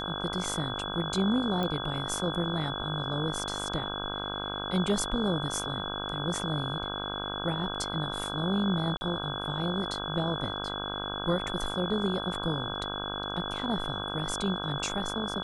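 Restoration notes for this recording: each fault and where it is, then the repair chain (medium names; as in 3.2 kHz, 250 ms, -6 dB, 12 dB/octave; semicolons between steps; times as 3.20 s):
buzz 50 Hz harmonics 32 -37 dBFS
whine 3.4 kHz -36 dBFS
1.63 s: pop -19 dBFS
8.97–9.01 s: dropout 40 ms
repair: de-click; de-hum 50 Hz, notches 32; band-stop 3.4 kHz, Q 30; interpolate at 8.97 s, 40 ms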